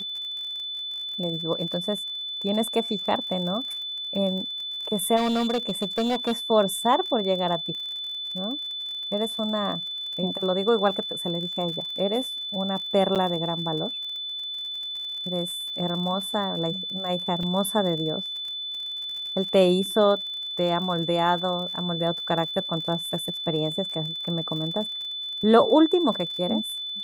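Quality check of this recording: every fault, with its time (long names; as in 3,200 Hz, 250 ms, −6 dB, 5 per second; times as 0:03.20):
surface crackle 50 per second −34 dBFS
whistle 3,500 Hz −30 dBFS
0:05.16–0:06.33: clipping −20.5 dBFS
0:13.15–0:13.16: drop-out 7.6 ms
0:17.43: drop-out 3.4 ms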